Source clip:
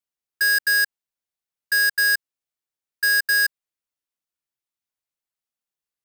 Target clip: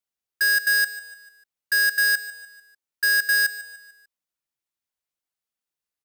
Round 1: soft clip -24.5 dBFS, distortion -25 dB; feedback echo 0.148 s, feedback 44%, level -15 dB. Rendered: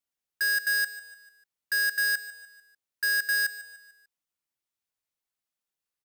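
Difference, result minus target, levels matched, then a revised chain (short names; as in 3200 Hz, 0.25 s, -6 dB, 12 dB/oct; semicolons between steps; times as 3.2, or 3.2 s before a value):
soft clip: distortion +17 dB
soft clip -13.5 dBFS, distortion -43 dB; feedback echo 0.148 s, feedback 44%, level -15 dB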